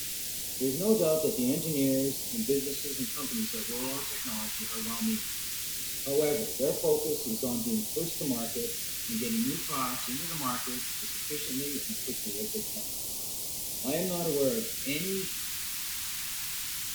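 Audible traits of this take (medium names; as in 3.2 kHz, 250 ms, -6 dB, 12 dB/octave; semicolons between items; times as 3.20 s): a quantiser's noise floor 6-bit, dither triangular; phasing stages 2, 0.17 Hz, lowest notch 510–1500 Hz; Vorbis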